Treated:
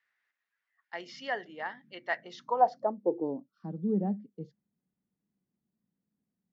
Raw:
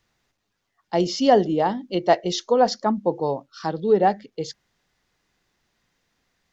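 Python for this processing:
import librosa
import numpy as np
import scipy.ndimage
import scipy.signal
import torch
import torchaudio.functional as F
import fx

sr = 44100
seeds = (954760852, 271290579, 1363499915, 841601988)

y = fx.filter_sweep_bandpass(x, sr, from_hz=1800.0, to_hz=200.0, start_s=2.13, end_s=3.54, q=3.8)
y = fx.dmg_noise_band(y, sr, seeds[0], low_hz=140.0, high_hz=270.0, level_db=-64.0, at=(0.99, 2.92), fade=0.02)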